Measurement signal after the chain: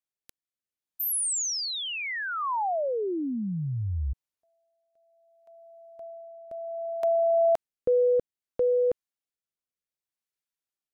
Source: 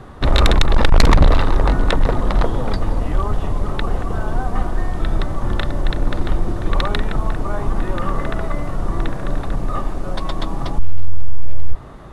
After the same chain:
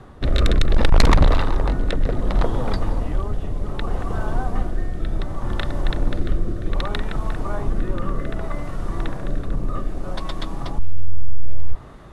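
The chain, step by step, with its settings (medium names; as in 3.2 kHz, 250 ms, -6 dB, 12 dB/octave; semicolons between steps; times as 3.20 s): rotary cabinet horn 0.65 Hz; trim -2 dB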